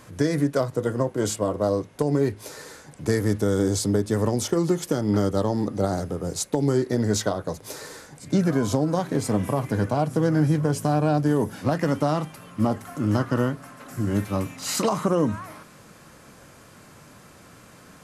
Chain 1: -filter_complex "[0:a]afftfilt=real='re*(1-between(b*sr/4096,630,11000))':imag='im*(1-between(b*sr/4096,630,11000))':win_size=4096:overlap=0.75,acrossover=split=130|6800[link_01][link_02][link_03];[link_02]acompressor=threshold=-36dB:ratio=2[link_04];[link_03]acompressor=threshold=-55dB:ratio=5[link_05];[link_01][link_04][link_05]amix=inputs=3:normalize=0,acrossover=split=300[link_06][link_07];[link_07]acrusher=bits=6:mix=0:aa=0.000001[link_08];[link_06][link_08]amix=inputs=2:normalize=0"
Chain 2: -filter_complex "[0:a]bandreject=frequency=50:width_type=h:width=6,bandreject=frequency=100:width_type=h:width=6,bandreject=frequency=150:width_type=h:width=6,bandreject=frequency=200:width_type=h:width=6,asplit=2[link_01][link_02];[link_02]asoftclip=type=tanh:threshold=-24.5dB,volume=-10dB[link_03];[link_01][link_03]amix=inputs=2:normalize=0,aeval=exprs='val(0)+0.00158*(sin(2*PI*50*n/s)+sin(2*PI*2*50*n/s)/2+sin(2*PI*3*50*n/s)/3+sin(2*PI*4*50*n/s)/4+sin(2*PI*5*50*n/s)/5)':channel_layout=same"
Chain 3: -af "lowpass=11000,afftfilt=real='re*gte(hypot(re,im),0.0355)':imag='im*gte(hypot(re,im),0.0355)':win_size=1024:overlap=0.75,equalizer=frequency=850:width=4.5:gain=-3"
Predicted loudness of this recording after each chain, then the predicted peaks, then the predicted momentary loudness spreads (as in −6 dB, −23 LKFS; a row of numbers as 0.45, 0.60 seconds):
−31.0, −23.5, −24.5 LKFS; −16.5, −9.5, −10.5 dBFS; 9, 10, 7 LU